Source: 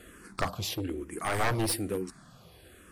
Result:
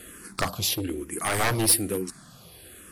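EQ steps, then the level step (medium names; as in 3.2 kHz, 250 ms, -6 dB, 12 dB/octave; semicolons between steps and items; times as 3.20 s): peaking EQ 210 Hz +4 dB 2.9 oct; treble shelf 2.1 kHz +10 dB; peaking EQ 11 kHz +6.5 dB 0.3 oct; 0.0 dB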